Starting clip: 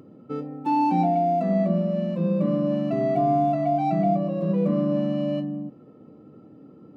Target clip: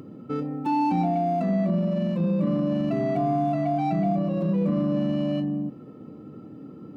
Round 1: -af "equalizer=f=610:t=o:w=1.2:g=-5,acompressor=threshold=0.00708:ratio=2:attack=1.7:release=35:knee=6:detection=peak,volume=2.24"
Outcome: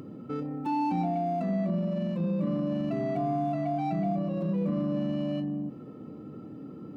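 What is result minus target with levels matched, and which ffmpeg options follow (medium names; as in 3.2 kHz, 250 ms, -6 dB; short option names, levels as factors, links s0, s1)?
compression: peak gain reduction +5 dB
-af "equalizer=f=610:t=o:w=1.2:g=-5,acompressor=threshold=0.0224:ratio=2:attack=1.7:release=35:knee=6:detection=peak,volume=2.24"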